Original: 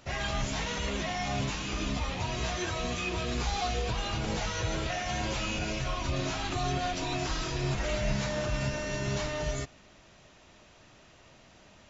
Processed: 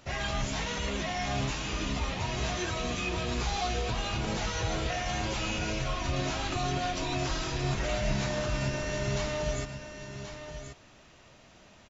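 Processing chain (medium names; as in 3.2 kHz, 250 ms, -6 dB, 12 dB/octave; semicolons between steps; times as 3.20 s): delay 1080 ms -9.5 dB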